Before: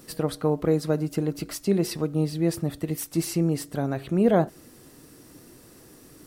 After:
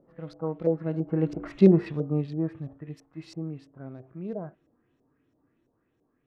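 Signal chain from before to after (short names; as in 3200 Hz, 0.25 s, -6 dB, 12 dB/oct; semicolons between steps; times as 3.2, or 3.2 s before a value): Wiener smoothing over 9 samples; Doppler pass-by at 1.53, 14 m/s, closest 2.6 m; harmonic-percussive split percussive -12 dB; LFO low-pass saw up 3 Hz 570–5700 Hz; gain +8.5 dB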